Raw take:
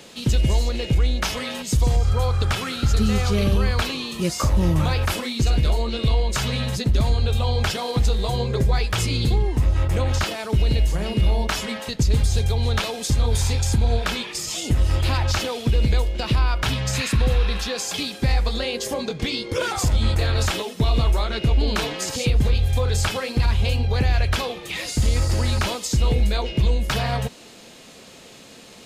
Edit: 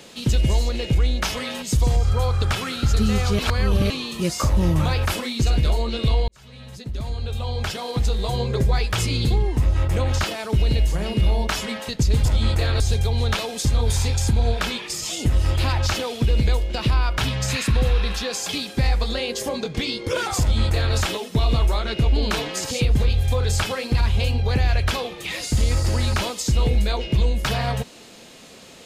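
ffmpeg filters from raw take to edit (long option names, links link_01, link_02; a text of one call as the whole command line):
ffmpeg -i in.wav -filter_complex "[0:a]asplit=6[link_01][link_02][link_03][link_04][link_05][link_06];[link_01]atrim=end=3.392[link_07];[link_02]atrim=start=3.388:end=3.902,asetpts=PTS-STARTPTS,areverse[link_08];[link_03]atrim=start=3.898:end=6.28,asetpts=PTS-STARTPTS,afade=type=out:start_time=2.378:duration=0.004:curve=hsin[link_09];[link_04]atrim=start=6.28:end=12.252,asetpts=PTS-STARTPTS,afade=type=in:duration=2.2[link_10];[link_05]atrim=start=19.848:end=20.402[link_11];[link_06]atrim=start=12.248[link_12];[link_07][link_08]acrossfade=duration=0.004:curve1=hsin:curve2=hsin[link_13];[link_09][link_10]concat=n=2:v=0:a=1[link_14];[link_13][link_14]acrossfade=duration=0.004:curve1=hsin:curve2=hsin[link_15];[link_15][link_11]acrossfade=duration=0.004:curve1=hsin:curve2=hsin[link_16];[link_16][link_12]acrossfade=duration=0.004:curve1=hsin:curve2=hsin" out.wav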